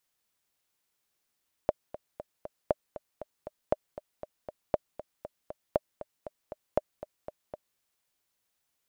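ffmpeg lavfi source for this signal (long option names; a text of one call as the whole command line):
ffmpeg -f lavfi -i "aevalsrc='pow(10,(-10.5-15*gte(mod(t,4*60/236),60/236))/20)*sin(2*PI*606*mod(t,60/236))*exp(-6.91*mod(t,60/236)/0.03)':duration=6.1:sample_rate=44100" out.wav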